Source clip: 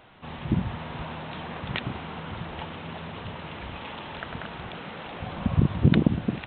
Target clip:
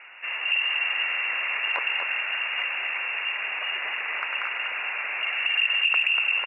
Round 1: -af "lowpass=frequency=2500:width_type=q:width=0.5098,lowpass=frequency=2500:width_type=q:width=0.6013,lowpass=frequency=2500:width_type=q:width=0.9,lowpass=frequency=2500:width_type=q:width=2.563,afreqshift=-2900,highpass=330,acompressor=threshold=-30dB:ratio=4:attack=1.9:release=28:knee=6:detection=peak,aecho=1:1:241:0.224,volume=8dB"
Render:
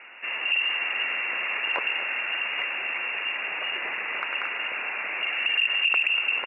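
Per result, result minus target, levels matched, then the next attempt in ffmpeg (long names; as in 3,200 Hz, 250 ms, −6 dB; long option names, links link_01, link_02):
250 Hz band +9.5 dB; echo-to-direct −7.5 dB
-af "lowpass=frequency=2500:width_type=q:width=0.5098,lowpass=frequency=2500:width_type=q:width=0.6013,lowpass=frequency=2500:width_type=q:width=0.9,lowpass=frequency=2500:width_type=q:width=2.563,afreqshift=-2900,highpass=670,acompressor=threshold=-30dB:ratio=4:attack=1.9:release=28:knee=6:detection=peak,aecho=1:1:241:0.224,volume=8dB"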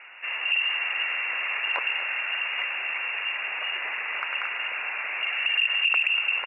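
echo-to-direct −7.5 dB
-af "lowpass=frequency=2500:width_type=q:width=0.5098,lowpass=frequency=2500:width_type=q:width=0.6013,lowpass=frequency=2500:width_type=q:width=0.9,lowpass=frequency=2500:width_type=q:width=2.563,afreqshift=-2900,highpass=670,acompressor=threshold=-30dB:ratio=4:attack=1.9:release=28:knee=6:detection=peak,aecho=1:1:241:0.531,volume=8dB"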